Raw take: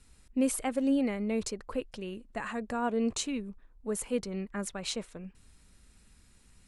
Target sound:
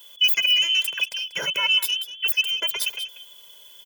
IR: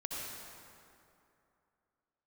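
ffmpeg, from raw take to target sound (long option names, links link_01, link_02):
-filter_complex "[0:a]afftfilt=real='real(if(between(b,1,1012),(2*floor((b-1)/92)+1)*92-b,b),0)':imag='imag(if(between(b,1,1012),(2*floor((b-1)/92)+1)*92-b,b),0)*if(between(b,1,1012),-1,1)':win_size=2048:overlap=0.75,highpass=frequency=79:width=0.5412,highpass=frequency=79:width=1.3066,lowshelf=frequency=160:gain=-3,bandreject=frequency=620:width=12,acrossover=split=910[link_01][link_02];[link_02]aexciter=amount=4.7:drive=5.5:freq=10000[link_03];[link_01][link_03]amix=inputs=2:normalize=0,aecho=1:1:3.4:0.78,asplit=2[link_04][link_05];[link_05]acompressor=threshold=-41dB:ratio=6,volume=1dB[link_06];[link_04][link_06]amix=inputs=2:normalize=0,aecho=1:1:327:0.2,asetrate=76440,aresample=44100,volume=4dB"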